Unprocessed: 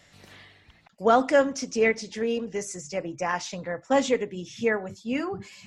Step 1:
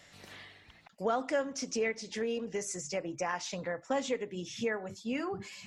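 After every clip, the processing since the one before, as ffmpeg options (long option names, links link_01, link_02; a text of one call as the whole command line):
ffmpeg -i in.wav -af "lowshelf=frequency=200:gain=-5.5,acompressor=threshold=-33dB:ratio=2.5" out.wav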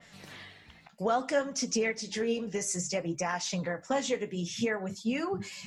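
ffmpeg -i in.wav -af "equalizer=frequency=170:width=2.9:gain=7,flanger=delay=4.3:depth=10:regen=57:speed=0.6:shape=sinusoidal,adynamicequalizer=threshold=0.002:dfrequency=3400:dqfactor=0.7:tfrequency=3400:tqfactor=0.7:attack=5:release=100:ratio=0.375:range=2:mode=boostabove:tftype=highshelf,volume=6.5dB" out.wav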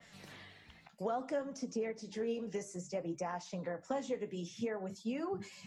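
ffmpeg -i in.wav -filter_complex "[0:a]acrossover=split=210|1100[link_01][link_02][link_03];[link_01]acompressor=threshold=-47dB:ratio=4[link_04];[link_02]acompressor=threshold=-29dB:ratio=4[link_05];[link_03]acompressor=threshold=-49dB:ratio=4[link_06];[link_04][link_05][link_06]amix=inputs=3:normalize=0,volume=-4dB" out.wav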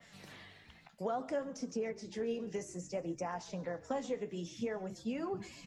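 ffmpeg -i in.wav -filter_complex "[0:a]asplit=6[link_01][link_02][link_03][link_04][link_05][link_06];[link_02]adelay=137,afreqshift=-51,volume=-20.5dB[link_07];[link_03]adelay=274,afreqshift=-102,volume=-24.7dB[link_08];[link_04]adelay=411,afreqshift=-153,volume=-28.8dB[link_09];[link_05]adelay=548,afreqshift=-204,volume=-33dB[link_10];[link_06]adelay=685,afreqshift=-255,volume=-37.1dB[link_11];[link_01][link_07][link_08][link_09][link_10][link_11]amix=inputs=6:normalize=0" out.wav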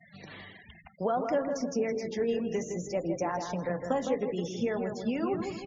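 ffmpeg -i in.wav -filter_complex "[0:a]asplit=2[link_01][link_02];[link_02]adelay=161,lowpass=frequency=3200:poles=1,volume=-6dB,asplit=2[link_03][link_04];[link_04]adelay=161,lowpass=frequency=3200:poles=1,volume=0.44,asplit=2[link_05][link_06];[link_06]adelay=161,lowpass=frequency=3200:poles=1,volume=0.44,asplit=2[link_07][link_08];[link_08]adelay=161,lowpass=frequency=3200:poles=1,volume=0.44,asplit=2[link_09][link_10];[link_10]adelay=161,lowpass=frequency=3200:poles=1,volume=0.44[link_11];[link_01][link_03][link_05][link_07][link_09][link_11]amix=inputs=6:normalize=0,afftfilt=real='re*gte(hypot(re,im),0.00251)':imag='im*gte(hypot(re,im),0.00251)':win_size=1024:overlap=0.75,volume=7dB" -ar 16000 -c:a wmav2 -b:a 128k out.wma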